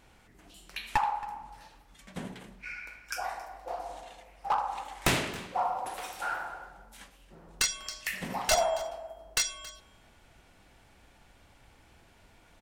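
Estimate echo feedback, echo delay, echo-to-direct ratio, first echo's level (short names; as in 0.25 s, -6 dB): no steady repeat, 0.274 s, -19.0 dB, -19.0 dB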